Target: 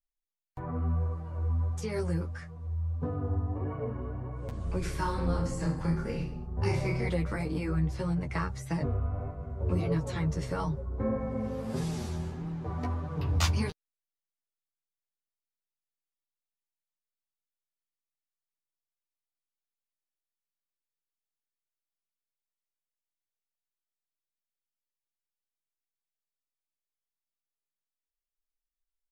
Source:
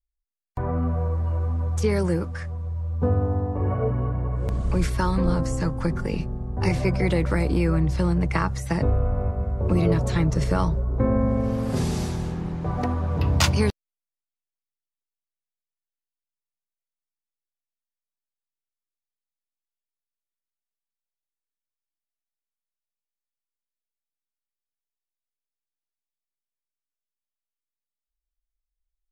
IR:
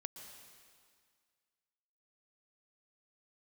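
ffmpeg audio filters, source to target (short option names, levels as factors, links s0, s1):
-filter_complex "[0:a]flanger=delay=6.2:depth=5.2:regen=6:speed=1.6:shape=sinusoidal,asplit=2[s0][s1];[s1]adelay=13,volume=0.562[s2];[s0][s2]amix=inputs=2:normalize=0,asplit=3[s3][s4][s5];[s3]afade=t=out:st=4.84:d=0.02[s6];[s4]aecho=1:1:30|66|109.2|161|223.2:0.631|0.398|0.251|0.158|0.1,afade=t=in:st=4.84:d=0.02,afade=t=out:st=7.08:d=0.02[s7];[s5]afade=t=in:st=7.08:d=0.02[s8];[s6][s7][s8]amix=inputs=3:normalize=0,volume=0.473"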